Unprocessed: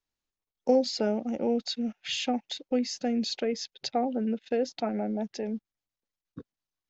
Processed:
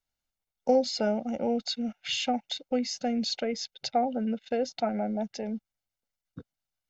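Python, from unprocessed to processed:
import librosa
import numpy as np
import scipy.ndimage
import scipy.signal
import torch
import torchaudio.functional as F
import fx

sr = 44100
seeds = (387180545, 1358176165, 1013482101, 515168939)

y = x + 0.49 * np.pad(x, (int(1.4 * sr / 1000.0), 0))[:len(x)]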